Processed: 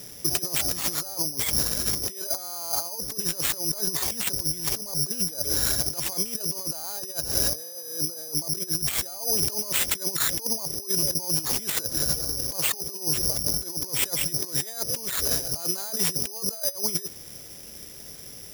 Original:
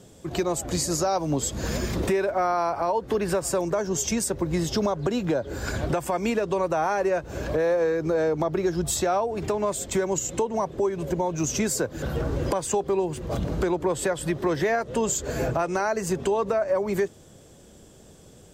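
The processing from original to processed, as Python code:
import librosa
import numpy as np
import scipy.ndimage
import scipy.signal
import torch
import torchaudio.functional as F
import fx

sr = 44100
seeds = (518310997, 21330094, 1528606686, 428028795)

y = fx.over_compress(x, sr, threshold_db=-30.0, ratio=-0.5)
y = (np.kron(y[::8], np.eye(8)[0]) * 8)[:len(y)]
y = F.gain(torch.from_numpy(y), -6.0).numpy()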